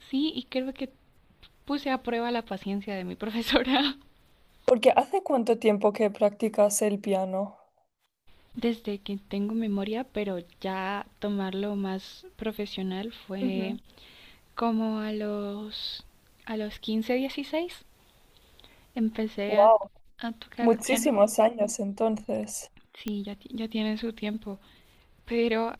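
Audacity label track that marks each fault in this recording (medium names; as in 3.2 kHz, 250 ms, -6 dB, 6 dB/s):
23.080000	23.080000	pop -18 dBFS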